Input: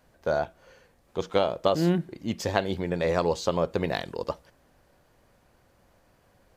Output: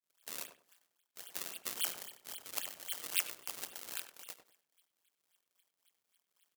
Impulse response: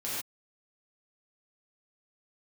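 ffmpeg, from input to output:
-filter_complex "[0:a]bandreject=f=60:t=h:w=6,bandreject=f=120:t=h:w=6,bandreject=f=180:t=h:w=6,bandreject=f=240:t=h:w=6,bandreject=f=300:t=h:w=6,bandreject=f=360:t=h:w=6,bandreject=f=420:t=h:w=6,bandreject=f=480:t=h:w=6,bandreject=f=540:t=h:w=6,agate=range=-33dB:threshold=-58dB:ratio=3:detection=peak,equalizer=f=420:w=1.9:g=-10.5,bandreject=f=1.4k:w=7.4,lowpass=f=2.8k:t=q:w=0.5098,lowpass=f=2.8k:t=q:w=0.6013,lowpass=f=2.8k:t=q:w=0.9,lowpass=f=2.8k:t=q:w=2.563,afreqshift=-3300,acrusher=samples=32:mix=1:aa=0.000001:lfo=1:lforange=51.2:lforate=3.7,tremolo=f=180:d=0.974,aderivative,asplit=2[a][b];[b]adelay=97,lowpass=f=1.1k:p=1,volume=-6dB,asplit=2[c][d];[d]adelay=97,lowpass=f=1.1k:p=1,volume=0.26,asplit=2[e][f];[f]adelay=97,lowpass=f=1.1k:p=1,volume=0.26[g];[c][e][g]amix=inputs=3:normalize=0[h];[a][h]amix=inputs=2:normalize=0,volume=2dB"

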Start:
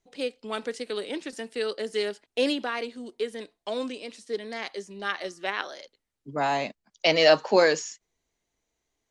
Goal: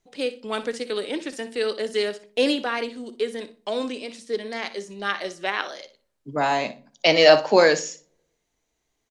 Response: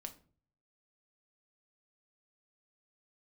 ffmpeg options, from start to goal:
-filter_complex "[0:a]aecho=1:1:60|120:0.188|0.0339,asplit=2[a][b];[1:a]atrim=start_sample=2205,asetrate=36603,aresample=44100[c];[b][c]afir=irnorm=-1:irlink=0,volume=-4dB[d];[a][d]amix=inputs=2:normalize=0,volume=1dB"

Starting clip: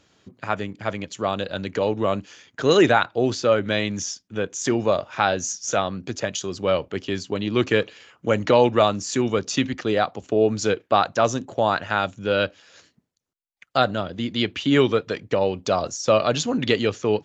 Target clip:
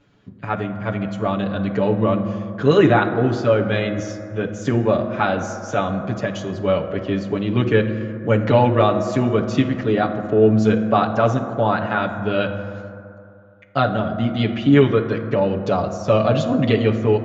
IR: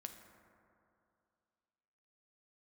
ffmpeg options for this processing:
-filter_complex "[0:a]bass=f=250:g=7,treble=f=4k:g=-15,asplit=2[a][b];[1:a]atrim=start_sample=2205,adelay=7[c];[b][c]afir=irnorm=-1:irlink=0,volume=8.5dB[d];[a][d]amix=inputs=2:normalize=0,volume=-4dB"

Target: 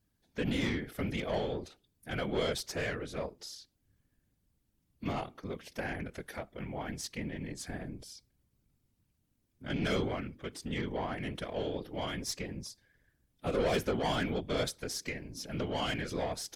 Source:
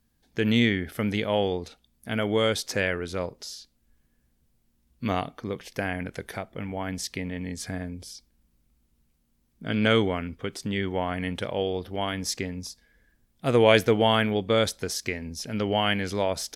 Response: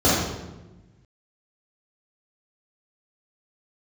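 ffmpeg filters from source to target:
-af "bandreject=f=123.2:t=h:w=4,bandreject=f=246.4:t=h:w=4,bandreject=f=369.6:t=h:w=4,aeval=exprs='(tanh(10*val(0)+0.3)-tanh(0.3))/10':c=same,afftfilt=real='hypot(re,im)*cos(2*PI*random(0))':imag='hypot(re,im)*sin(2*PI*random(1))':win_size=512:overlap=0.75"

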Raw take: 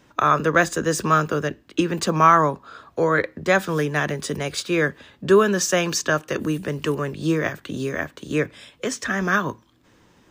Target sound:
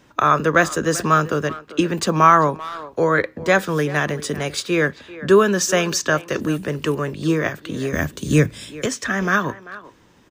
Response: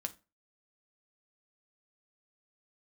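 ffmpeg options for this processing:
-filter_complex "[0:a]asettb=1/sr,asplit=3[a][b][c];[a]atrim=end=7.934[d];[b]atrim=start=7.93:end=8.86,asetpts=PTS-STARTPTS,afade=t=in:d=0.004:c=qsin,afade=t=out:st=0.926:d=0.004:c=qsin,bass=f=250:g=13,treble=f=4k:g=12[e];[c]atrim=start=8.856[f];[d][e]acrossfade=d=0.004:c1=hsin:c2=qsin[g];[g][f]acrossfade=d=0.004:c1=qsin:c2=hsin,asplit=2[h][i];[i]adelay=390,highpass=300,lowpass=3.4k,asoftclip=type=hard:threshold=-11.5dB,volume=-16dB[j];[h][j]amix=inputs=2:normalize=0,volume=2dB"

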